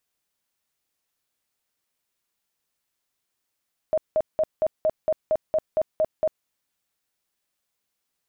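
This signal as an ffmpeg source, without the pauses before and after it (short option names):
-f lavfi -i "aevalsrc='0.133*sin(2*PI*627*mod(t,0.23))*lt(mod(t,0.23),29/627)':d=2.53:s=44100"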